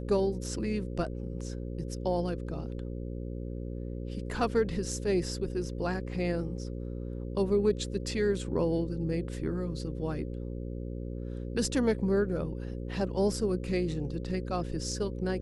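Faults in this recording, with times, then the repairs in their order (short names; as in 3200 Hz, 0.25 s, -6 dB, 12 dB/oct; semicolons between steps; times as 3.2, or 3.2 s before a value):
buzz 60 Hz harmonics 9 -37 dBFS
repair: de-hum 60 Hz, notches 9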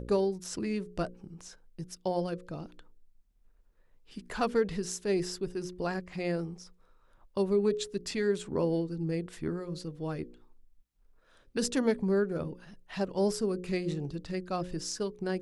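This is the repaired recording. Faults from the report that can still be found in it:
none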